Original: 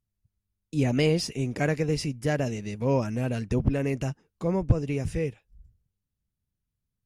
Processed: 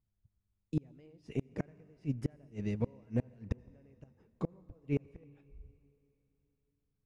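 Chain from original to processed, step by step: low-pass 1.2 kHz 6 dB/octave; inverted gate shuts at -20 dBFS, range -35 dB; on a send: reverberation RT60 3.3 s, pre-delay 67 ms, DRR 22 dB

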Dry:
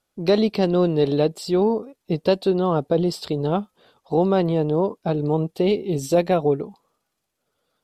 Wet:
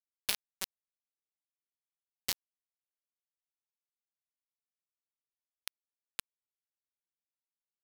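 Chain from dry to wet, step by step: full-wave rectifier; steep high-pass 2.2 kHz 36 dB/octave; bit crusher 4-bit; trim +2.5 dB

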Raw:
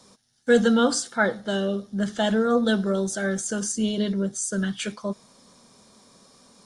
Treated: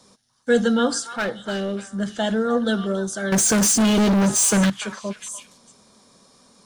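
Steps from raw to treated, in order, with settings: 1.16–1.89 s: hard clipper -20 dBFS, distortion -19 dB; 3.32–4.70 s: waveshaping leveller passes 5; repeats whose band climbs or falls 293 ms, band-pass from 1.2 kHz, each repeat 1.4 oct, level -8.5 dB

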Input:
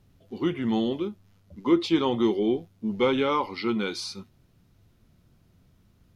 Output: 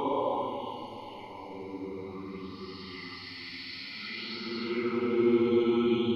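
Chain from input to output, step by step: touch-sensitive flanger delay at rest 6.8 ms, full sweep at -23 dBFS; Paulstretch 20×, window 0.10 s, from 3.41 s; sweeping bell 0.56 Hz 320–4900 Hz +6 dB; trim -2 dB

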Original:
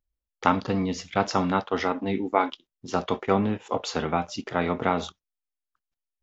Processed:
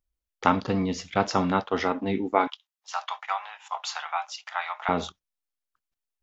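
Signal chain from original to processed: 2.47–4.89 s: steep high-pass 760 Hz 48 dB/octave

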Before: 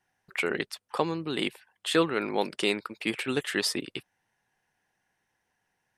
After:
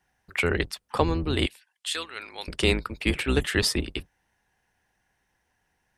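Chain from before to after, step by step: octave divider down 2 oct, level +3 dB; 1.46–2.48 s: band-pass filter 6.6 kHz, Q 0.63; trim +3.5 dB

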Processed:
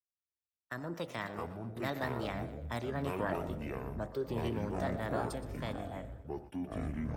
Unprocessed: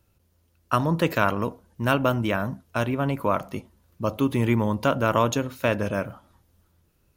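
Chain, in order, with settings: Doppler pass-by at 3.18 s, 8 m/s, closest 12 m; ever faster or slower copies 308 ms, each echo -7 st, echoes 3; dynamic bell 1 kHz, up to -6 dB, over -41 dBFS, Q 2.8; compression 1.5:1, threshold -31 dBFS, peak gain reduction 5.5 dB; peaking EQ 2.8 kHz -4 dB 1.1 oct; two-band feedback delay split 500 Hz, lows 344 ms, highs 122 ms, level -13.5 dB; gate -40 dBFS, range -18 dB; formant shift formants +5 st; three bands expanded up and down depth 40%; trim -8 dB

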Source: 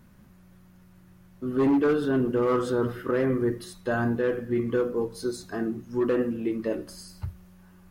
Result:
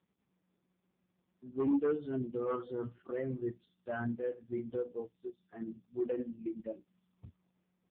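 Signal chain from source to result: expander on every frequency bin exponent 2; 6.47–6.98 s: low-pass 1.5 kHz 6 dB/octave; trim -6 dB; AMR-NB 5.15 kbps 8 kHz

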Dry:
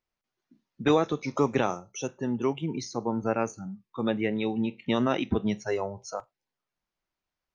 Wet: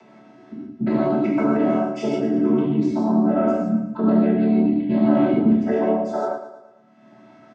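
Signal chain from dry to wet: vocoder on a held chord major triad, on D3; low-pass 1.5 kHz 6 dB/octave; peaking EQ 140 Hz +5.5 dB 1.6 oct; comb 3.1 ms, depth 97%; in parallel at 0 dB: upward compressor, threshold -25 dBFS; on the sum: peak limiter -16 dBFS, peak gain reduction 11 dB; flange 1 Hz, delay 4.3 ms, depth 3.8 ms, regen -60%; on a send: feedback delay 112 ms, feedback 49%, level -11 dB; on the sum: gated-style reverb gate 190 ms flat, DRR -5.5 dB; trim +5 dB

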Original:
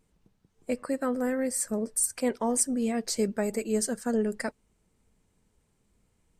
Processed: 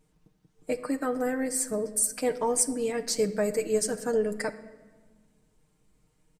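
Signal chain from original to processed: comb 6.5 ms, depth 64%; reverberation RT60 1.4 s, pre-delay 7 ms, DRR 11.5 dB

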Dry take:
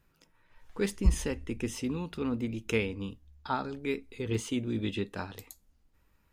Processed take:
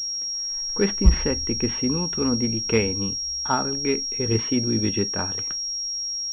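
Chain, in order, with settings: class-D stage that switches slowly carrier 5.6 kHz; trim +8.5 dB

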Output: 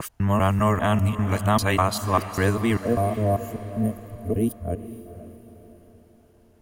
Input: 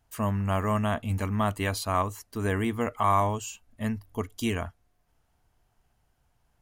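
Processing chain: time reversed locally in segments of 198 ms; time-frequency box 2.85–4.84 s, 720–8900 Hz -21 dB; echo that smears into a reverb 481 ms, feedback 45%, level -13 dB; trim +6 dB

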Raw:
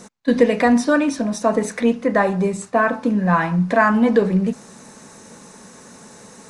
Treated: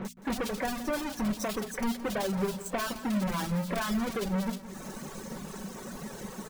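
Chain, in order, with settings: square wave that keeps the level; compression 5:1, threshold -27 dBFS, peak gain reduction 18.5 dB; bass shelf 83 Hz +10 dB; bands offset in time lows, highs 50 ms, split 2.6 kHz; saturation -22 dBFS, distortion -17 dB; reverb removal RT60 1.5 s; hum notches 60/120/180/240 Hz; comb 5.3 ms, depth 41%; on a send: reverse echo 31 ms -24 dB; on the sum: bit-crushed delay 170 ms, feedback 55%, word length 10-bit, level -14 dB; trim -1 dB

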